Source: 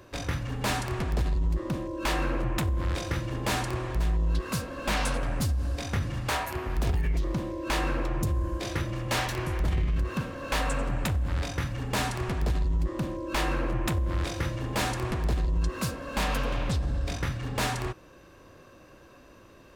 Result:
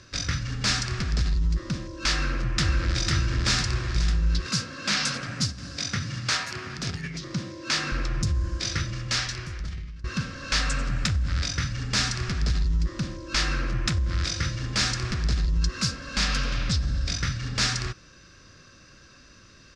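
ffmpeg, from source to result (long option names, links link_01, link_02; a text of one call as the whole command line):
ffmpeg -i in.wav -filter_complex "[0:a]asplit=2[link_01][link_02];[link_02]afade=type=in:start_time=2.09:duration=0.01,afade=type=out:start_time=3.01:duration=0.01,aecho=0:1:500|1000|1500|2000|2500|3000|3500|4000|4500:0.749894|0.449937|0.269962|0.161977|0.0971863|0.0583118|0.0349871|0.0209922|0.0125953[link_03];[link_01][link_03]amix=inputs=2:normalize=0,asettb=1/sr,asplit=3[link_04][link_05][link_06];[link_04]atrim=end=4.464[link_07];[link_05]atrim=start=4.46:end=7.92,asetpts=PTS-STARTPTS,afade=type=in:duration=0.004:curve=qsin,afade=type=out:start_time=3.456:duration=0.004:curve=qsin,highpass=frequency=110:width=0.5412,highpass=frequency=110:width=1.3066[link_08];[link_06]atrim=start=7.916[link_09];[link_07][link_08]acrossfade=duration=0.004:curve1=hsin:curve2=qsin[link_10];[link_10][link_09]acrossfade=duration=0.004:curve1=qsin:curve2=hsin,asplit=2[link_11][link_12];[link_11]atrim=end=10.04,asetpts=PTS-STARTPTS,afade=type=out:start_time=8.75:duration=1.29:silence=0.0891251[link_13];[link_12]atrim=start=10.04,asetpts=PTS-STARTPTS,afade=type=in:duration=0.004:curve=hsin:silence=0.0891251[link_14];[link_13][link_14]concat=n=2:v=0:a=1,firequalizer=gain_entry='entry(190,0);entry(320,-8);entry(910,-13);entry(1300,2);entry(3000,1);entry(5100,13);entry(14000,-28)':delay=0.05:min_phase=1,volume=2.5dB" out.wav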